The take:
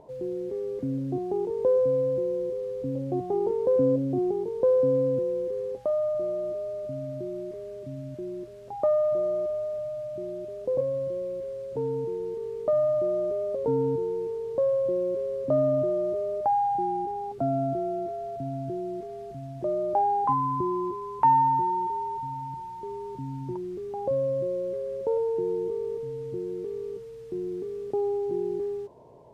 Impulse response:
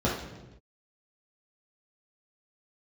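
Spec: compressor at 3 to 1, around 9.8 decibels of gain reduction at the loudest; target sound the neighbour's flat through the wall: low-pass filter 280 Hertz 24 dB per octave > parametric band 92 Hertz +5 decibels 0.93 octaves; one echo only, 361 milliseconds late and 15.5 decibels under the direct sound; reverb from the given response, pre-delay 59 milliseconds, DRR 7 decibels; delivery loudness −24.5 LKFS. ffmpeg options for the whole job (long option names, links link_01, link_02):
-filter_complex "[0:a]acompressor=threshold=-30dB:ratio=3,aecho=1:1:361:0.168,asplit=2[link_01][link_02];[1:a]atrim=start_sample=2205,adelay=59[link_03];[link_02][link_03]afir=irnorm=-1:irlink=0,volume=-19dB[link_04];[link_01][link_04]amix=inputs=2:normalize=0,lowpass=frequency=280:width=0.5412,lowpass=frequency=280:width=1.3066,equalizer=frequency=92:width_type=o:width=0.93:gain=5,volume=14dB"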